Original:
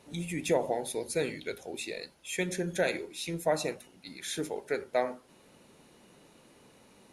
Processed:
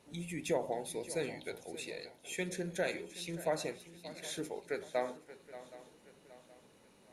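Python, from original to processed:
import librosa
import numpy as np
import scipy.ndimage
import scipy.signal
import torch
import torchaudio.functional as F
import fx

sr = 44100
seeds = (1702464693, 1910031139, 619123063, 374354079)

y = fx.echo_swing(x, sr, ms=772, ratio=3, feedback_pct=38, wet_db=-15.5)
y = F.gain(torch.from_numpy(y), -6.0).numpy()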